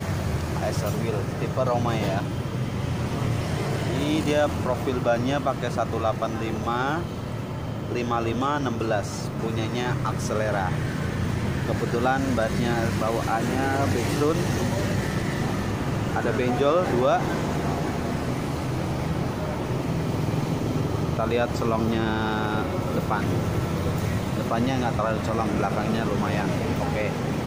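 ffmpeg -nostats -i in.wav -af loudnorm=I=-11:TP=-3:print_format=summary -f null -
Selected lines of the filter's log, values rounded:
Input Integrated:    -25.5 LUFS
Input True Peak:      -9.5 dBTP
Input LRA:             2.2 LU
Input Threshold:     -35.5 LUFS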